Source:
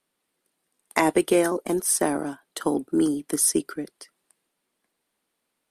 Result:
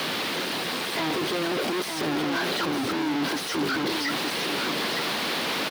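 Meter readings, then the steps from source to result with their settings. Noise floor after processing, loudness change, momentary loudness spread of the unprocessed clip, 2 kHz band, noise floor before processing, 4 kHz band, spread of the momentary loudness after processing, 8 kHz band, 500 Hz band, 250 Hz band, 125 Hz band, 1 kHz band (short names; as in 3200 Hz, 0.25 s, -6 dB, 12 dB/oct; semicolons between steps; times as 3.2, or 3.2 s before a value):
-31 dBFS, -2.5 dB, 12 LU, +7.5 dB, -79 dBFS, +13.5 dB, 2 LU, -9.0 dB, -3.0 dB, -2.0 dB, +2.0 dB, +2.0 dB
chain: infinite clipping; HPF 120 Hz 12 dB/oct; resonant high shelf 6000 Hz -12 dB, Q 1.5; on a send: echo 0.91 s -6 dB; on the sum: whine 1100 Hz -48 dBFS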